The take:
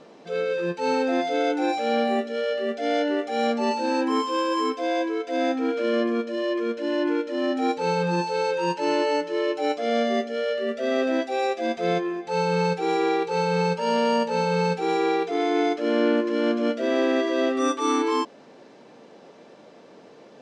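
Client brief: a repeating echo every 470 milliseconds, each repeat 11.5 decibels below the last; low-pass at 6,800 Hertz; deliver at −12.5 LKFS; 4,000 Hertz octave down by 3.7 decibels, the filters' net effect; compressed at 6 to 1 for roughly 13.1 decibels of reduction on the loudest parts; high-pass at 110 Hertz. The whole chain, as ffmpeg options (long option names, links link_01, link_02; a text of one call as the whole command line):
ffmpeg -i in.wav -af "highpass=110,lowpass=6800,equalizer=frequency=4000:width_type=o:gain=-4.5,acompressor=threshold=-33dB:ratio=6,aecho=1:1:470|940|1410:0.266|0.0718|0.0194,volume=23dB" out.wav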